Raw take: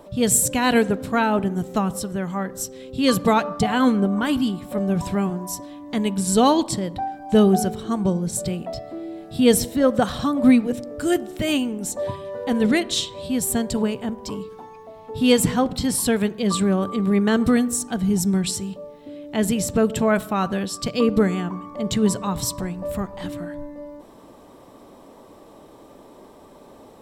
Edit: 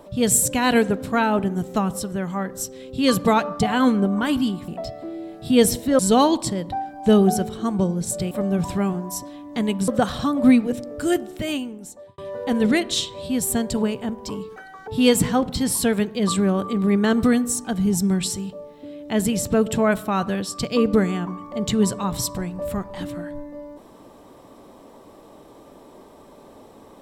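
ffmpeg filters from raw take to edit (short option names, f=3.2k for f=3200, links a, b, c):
-filter_complex "[0:a]asplit=8[a][b][c][d][e][f][g][h];[a]atrim=end=4.682[i];[b]atrim=start=8.568:end=9.882[j];[c]atrim=start=6.248:end=8.572[k];[d]atrim=start=4.678:end=6.252[l];[e]atrim=start=9.878:end=12.18,asetpts=PTS-STARTPTS,afade=t=out:st=1.212:d=1.09[m];[f]atrim=start=12.18:end=14.564,asetpts=PTS-STARTPTS,afade=t=in:d=0.004:c=hsin[n];[g]atrim=start=14.56:end=15.11,asetpts=PTS-STARTPTS,asetrate=76734,aresample=44100[o];[h]atrim=start=15.106[p];[i][j]acrossfade=d=0.004:c1=hsin:c2=hsin[q];[q][k]acrossfade=d=0.004:c1=hsin:c2=hsin[r];[r][l]acrossfade=d=0.004:c1=hsin:c2=hsin[s];[m][n]concat=n=2:v=0:a=1[t];[s][t]acrossfade=d=0.004:c1=hsin:c2=hsin[u];[u][o]acrossfade=d=0.004:c1=hsin:c2=hsin[v];[v][p]acrossfade=d=0.004:c1=hsin:c2=hsin"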